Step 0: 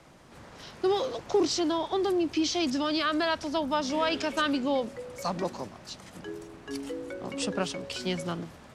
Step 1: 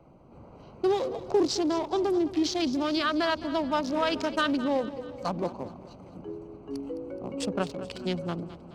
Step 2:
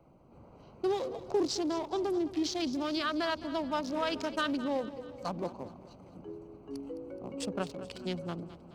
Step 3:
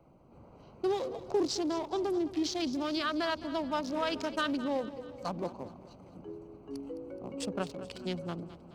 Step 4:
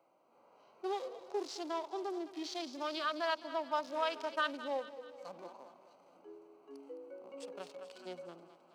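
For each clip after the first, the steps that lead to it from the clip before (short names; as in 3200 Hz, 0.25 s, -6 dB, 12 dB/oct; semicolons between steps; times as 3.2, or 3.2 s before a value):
Wiener smoothing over 25 samples; split-band echo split 320 Hz, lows 0.372 s, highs 0.212 s, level -15 dB; gain +1.5 dB
high shelf 8100 Hz +5 dB; gain -5.5 dB
nothing audible
HPF 630 Hz 12 dB/oct; harmonic-percussive split percussive -15 dB; gain +1 dB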